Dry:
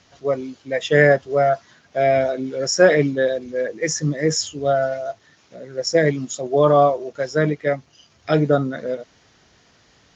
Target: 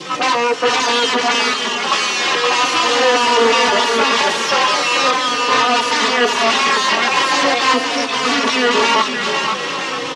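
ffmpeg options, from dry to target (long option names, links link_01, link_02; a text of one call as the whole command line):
ffmpeg -i in.wav -filter_complex "[0:a]adynamicequalizer=threshold=0.0316:dfrequency=760:dqfactor=1.1:tfrequency=760:tqfactor=1.1:attack=5:release=100:ratio=0.375:range=3.5:mode=cutabove:tftype=bell,acrossover=split=1900[link_01][link_02];[link_01]acompressor=threshold=-30dB:ratio=5[link_03];[link_03][link_02]amix=inputs=2:normalize=0,asetrate=80880,aresample=44100,atempo=0.545254,alimiter=limit=-22.5dB:level=0:latency=1:release=83,acontrast=58,aeval=exprs='0.158*(cos(1*acos(clip(val(0)/0.158,-1,1)))-cos(1*PI/2))+0.0282*(cos(4*acos(clip(val(0)/0.158,-1,1)))-cos(4*PI/2))+0.00794*(cos(8*acos(clip(val(0)/0.158,-1,1)))-cos(8*PI/2))':channel_layout=same,aeval=exprs='0.2*sin(PI/2*7.94*val(0)/0.2)':channel_layout=same,highpass=210,equalizer=frequency=230:width_type=q:width=4:gain=3,equalizer=frequency=430:width_type=q:width=4:gain=7,equalizer=frequency=1100:width_type=q:width=4:gain=6,equalizer=frequency=1800:width_type=q:width=4:gain=4,equalizer=frequency=2800:width_type=q:width=4:gain=5,lowpass=frequency=6000:width=0.5412,lowpass=frequency=6000:width=1.3066,asplit=2[link_04][link_05];[link_05]aecho=0:1:520|962|1338|1657|1928:0.631|0.398|0.251|0.158|0.1[link_06];[link_04][link_06]amix=inputs=2:normalize=0,asplit=2[link_07][link_08];[link_08]adelay=3.3,afreqshift=-0.41[link_09];[link_07][link_09]amix=inputs=2:normalize=1,volume=2.5dB" out.wav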